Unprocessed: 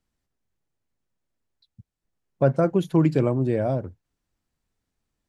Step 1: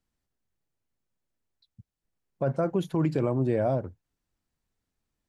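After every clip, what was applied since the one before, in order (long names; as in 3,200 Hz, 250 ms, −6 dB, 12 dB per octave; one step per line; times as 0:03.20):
dynamic equaliser 890 Hz, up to +4 dB, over −36 dBFS, Q 0.81
brickwall limiter −13.5 dBFS, peak gain reduction 9 dB
level −3 dB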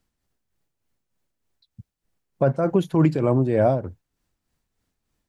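amplitude tremolo 3.3 Hz, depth 52%
level +8.5 dB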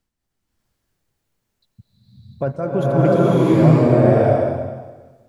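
slow-attack reverb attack 670 ms, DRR −9.5 dB
level −3 dB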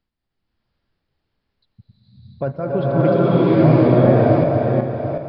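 feedback delay that plays each chunk backwards 370 ms, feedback 49%, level −4.5 dB
downsampling to 11,025 Hz
level −1 dB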